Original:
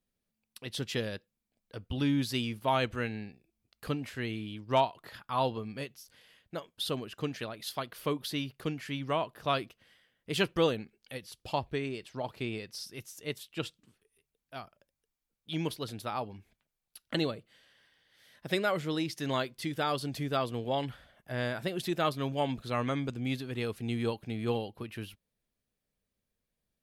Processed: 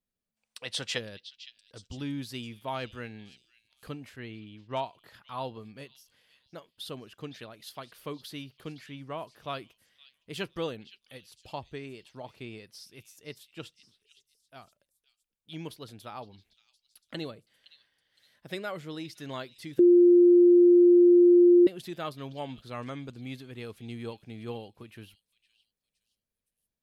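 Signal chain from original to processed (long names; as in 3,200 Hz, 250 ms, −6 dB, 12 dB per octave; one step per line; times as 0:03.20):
0:00.36–0:00.98: gain on a spectral selection 460–9,900 Hz +12 dB
0:04.16–0:04.84: low-pass that shuts in the quiet parts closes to 2,300 Hz, open at −22 dBFS
0:08.86–0:09.36: high-shelf EQ 3,600 Hz −8.5 dB
echo through a band-pass that steps 514 ms, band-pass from 3,800 Hz, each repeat 0.7 octaves, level −12 dB
0:19.79–0:21.67: beep over 351 Hz −7.5 dBFS
level −6.5 dB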